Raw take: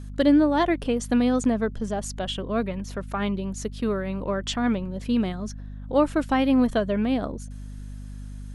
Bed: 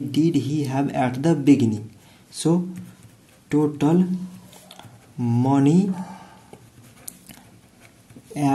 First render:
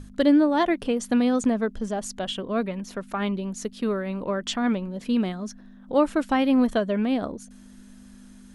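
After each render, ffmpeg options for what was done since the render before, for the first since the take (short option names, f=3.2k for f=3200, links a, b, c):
-af "bandreject=f=50:t=h:w=6,bandreject=f=100:t=h:w=6,bandreject=f=150:t=h:w=6"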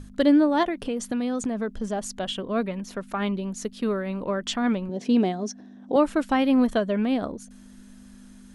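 -filter_complex "[0:a]asettb=1/sr,asplit=3[a][b][c];[a]atrim=end=0.634[d];[b]atrim=start=0.63:end=1.84,asetpts=PTS-STARTPTS,afade=t=in:d=0.004:c=qsin,afade=t=out:st=1.206:d=0.004:c=qsin,acompressor=threshold=-23dB:ratio=6:attack=3.2:release=140:knee=1:detection=peak[e];[c]atrim=start=1.836[f];[d][e]acrossfade=d=0.004:c1=hsin:c2=qsin[g];[g][f]acrossfade=d=0.004:c1=qsin:c2=hsin,asettb=1/sr,asplit=3[h][i][j];[h]atrim=end=4.894[k];[i]atrim=start=4.89:end=5.96,asetpts=PTS-STARTPTS,afade=t=in:d=0.004:c=qsin,afade=t=out:st=1.066:d=0.004:c=qsin,highpass=100,equalizer=f=290:t=q:w=4:g=8,equalizer=f=410:t=q:w=4:g=8,equalizer=f=730:t=q:w=4:g=9,equalizer=f=1.3k:t=q:w=4:g=-6,equalizer=f=5.8k:t=q:w=4:g=8,lowpass=f=9.3k:w=0.5412,lowpass=f=9.3k:w=1.3066[l];[j]atrim=start=5.956[m];[k][l]acrossfade=d=0.004:c1=hsin:c2=qsin[n];[n][m]acrossfade=d=0.004:c1=qsin:c2=hsin"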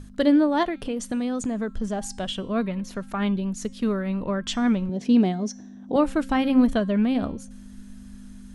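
-af "bandreject=f=267.8:t=h:w=4,bandreject=f=535.6:t=h:w=4,bandreject=f=803.4:t=h:w=4,bandreject=f=1.0712k:t=h:w=4,bandreject=f=1.339k:t=h:w=4,bandreject=f=1.6068k:t=h:w=4,bandreject=f=1.8746k:t=h:w=4,bandreject=f=2.1424k:t=h:w=4,bandreject=f=2.4102k:t=h:w=4,bandreject=f=2.678k:t=h:w=4,bandreject=f=2.9458k:t=h:w=4,bandreject=f=3.2136k:t=h:w=4,bandreject=f=3.4814k:t=h:w=4,bandreject=f=3.7492k:t=h:w=4,bandreject=f=4.017k:t=h:w=4,bandreject=f=4.2848k:t=h:w=4,bandreject=f=4.5526k:t=h:w=4,bandreject=f=4.8204k:t=h:w=4,bandreject=f=5.0882k:t=h:w=4,bandreject=f=5.356k:t=h:w=4,bandreject=f=5.6238k:t=h:w=4,bandreject=f=5.8916k:t=h:w=4,bandreject=f=6.1594k:t=h:w=4,bandreject=f=6.4272k:t=h:w=4,bandreject=f=6.695k:t=h:w=4,bandreject=f=6.9628k:t=h:w=4,bandreject=f=7.2306k:t=h:w=4,bandreject=f=7.4984k:t=h:w=4,bandreject=f=7.7662k:t=h:w=4,bandreject=f=8.034k:t=h:w=4,bandreject=f=8.3018k:t=h:w=4,bandreject=f=8.5696k:t=h:w=4,bandreject=f=8.8374k:t=h:w=4,bandreject=f=9.1052k:t=h:w=4,bandreject=f=9.373k:t=h:w=4,asubboost=boost=2.5:cutoff=230"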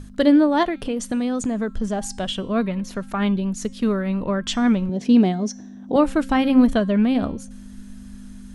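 -af "volume=3.5dB"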